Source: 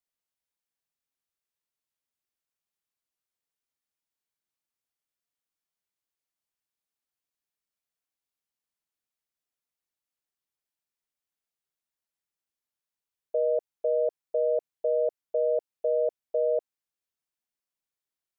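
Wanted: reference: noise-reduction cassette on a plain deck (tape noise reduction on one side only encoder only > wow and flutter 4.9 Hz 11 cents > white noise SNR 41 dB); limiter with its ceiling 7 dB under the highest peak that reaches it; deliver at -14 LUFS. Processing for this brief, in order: peak limiter -25.5 dBFS; tape noise reduction on one side only encoder only; wow and flutter 4.9 Hz 11 cents; white noise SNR 41 dB; trim +21 dB

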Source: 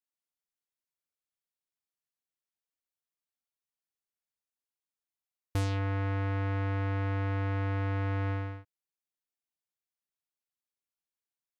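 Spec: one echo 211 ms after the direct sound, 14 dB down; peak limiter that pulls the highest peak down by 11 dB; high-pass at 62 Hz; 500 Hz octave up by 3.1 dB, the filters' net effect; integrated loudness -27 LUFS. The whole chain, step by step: high-pass 62 Hz; peaking EQ 500 Hz +3.5 dB; peak limiter -29 dBFS; delay 211 ms -14 dB; trim +13.5 dB

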